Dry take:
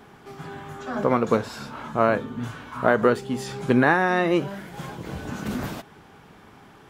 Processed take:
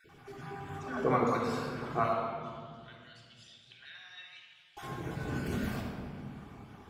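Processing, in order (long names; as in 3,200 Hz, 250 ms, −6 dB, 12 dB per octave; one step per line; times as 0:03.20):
time-frequency cells dropped at random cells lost 32%
0:02.13–0:04.77: four-pole ladder band-pass 3,800 Hz, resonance 55%
convolution reverb RT60 2.0 s, pre-delay 3 ms, DRR −3 dB
level −8.5 dB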